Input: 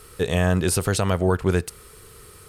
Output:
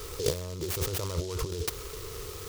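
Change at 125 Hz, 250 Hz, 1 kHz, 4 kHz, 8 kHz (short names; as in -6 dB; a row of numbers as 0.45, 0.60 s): -11.5, -16.0, -13.0, -4.0, -6.5 dB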